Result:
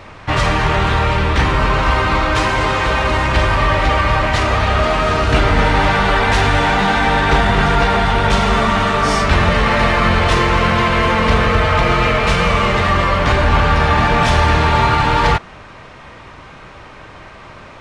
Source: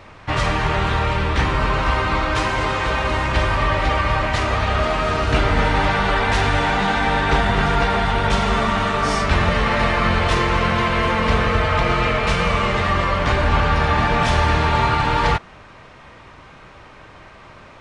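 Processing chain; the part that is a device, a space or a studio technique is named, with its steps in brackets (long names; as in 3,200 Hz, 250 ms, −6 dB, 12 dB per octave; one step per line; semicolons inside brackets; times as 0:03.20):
parallel distortion (in parallel at −8.5 dB: hard clipping −22.5 dBFS, distortion −6 dB)
on the sum: level +3 dB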